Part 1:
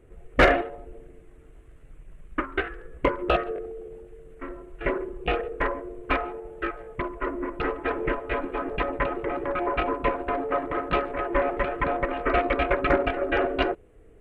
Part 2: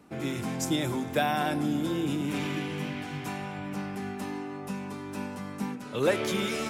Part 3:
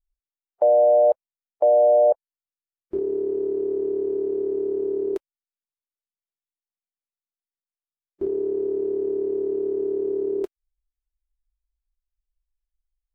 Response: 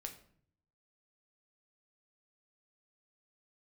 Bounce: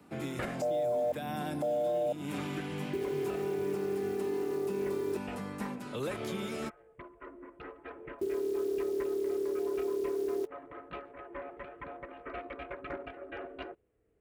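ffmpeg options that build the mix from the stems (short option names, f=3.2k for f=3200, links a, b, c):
-filter_complex "[0:a]volume=-18.5dB[a];[1:a]equalizer=f=5.9k:w=5.1:g=-4.5,acrossover=split=180|510|1200|4400[b][c][d][e][f];[b]acompressor=threshold=-40dB:ratio=4[g];[c]acompressor=threshold=-37dB:ratio=4[h];[d]acompressor=threshold=-41dB:ratio=4[i];[e]acompressor=threshold=-47dB:ratio=4[j];[f]acompressor=threshold=-50dB:ratio=4[k];[g][h][i][j][k]amix=inputs=5:normalize=0,volume=-1.5dB[l];[2:a]acrusher=bits=8:dc=4:mix=0:aa=0.000001,volume=-5.5dB[m];[a][l][m]amix=inputs=3:normalize=0,highpass=64,alimiter=level_in=1.5dB:limit=-24dB:level=0:latency=1:release=187,volume=-1.5dB"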